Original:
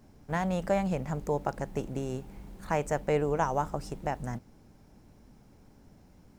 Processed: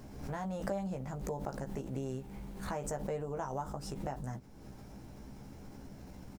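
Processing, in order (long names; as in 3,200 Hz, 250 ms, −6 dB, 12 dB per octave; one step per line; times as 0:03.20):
dynamic equaliser 2,300 Hz, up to −7 dB, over −51 dBFS, Q 1.6
downward compressor 2.5 to 1, threshold −51 dBFS, peak gain reduction 18.5 dB
double-tracking delay 15 ms −5 dB
background raised ahead of every attack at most 61 dB per second
level +6 dB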